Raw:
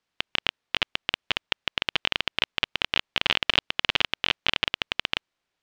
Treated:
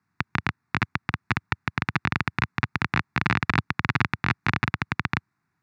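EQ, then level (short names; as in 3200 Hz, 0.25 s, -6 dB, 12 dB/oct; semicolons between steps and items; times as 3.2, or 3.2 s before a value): HPF 95 Hz 24 dB/oct; tone controls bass +13 dB, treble -10 dB; fixed phaser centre 1300 Hz, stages 4; +8.0 dB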